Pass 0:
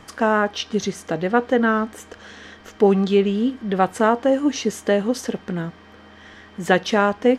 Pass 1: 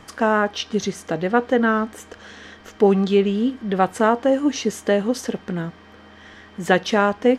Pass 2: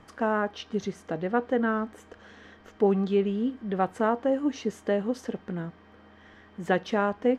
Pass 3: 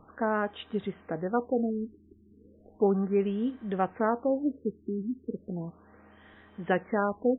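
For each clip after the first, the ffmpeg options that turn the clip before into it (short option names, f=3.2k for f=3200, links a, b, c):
-af anull
-af "highshelf=f=2.9k:g=-10.5,volume=-7dB"
-af "afftfilt=real='re*lt(b*sr/1024,390*pow(4000/390,0.5+0.5*sin(2*PI*0.35*pts/sr)))':imag='im*lt(b*sr/1024,390*pow(4000/390,0.5+0.5*sin(2*PI*0.35*pts/sr)))':win_size=1024:overlap=0.75,volume=-2dB"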